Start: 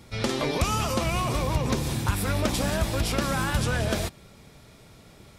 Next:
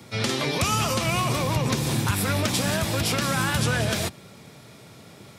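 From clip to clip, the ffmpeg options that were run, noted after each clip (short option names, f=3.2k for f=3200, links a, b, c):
-filter_complex "[0:a]highpass=f=99:w=0.5412,highpass=f=99:w=1.3066,acrossover=split=160|1400|6000[a][b][c][d];[b]alimiter=level_in=2dB:limit=-24dB:level=0:latency=1:release=173,volume=-2dB[e];[a][e][c][d]amix=inputs=4:normalize=0,volume=5dB"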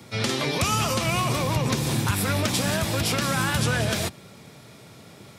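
-af anull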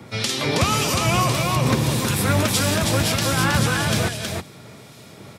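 -filter_complex "[0:a]acrossover=split=2400[a][b];[a]aeval=exprs='val(0)*(1-0.7/2+0.7/2*cos(2*PI*1.7*n/s))':c=same[c];[b]aeval=exprs='val(0)*(1-0.7/2-0.7/2*cos(2*PI*1.7*n/s))':c=same[d];[c][d]amix=inputs=2:normalize=0,aecho=1:1:320:0.631,volume=6dB"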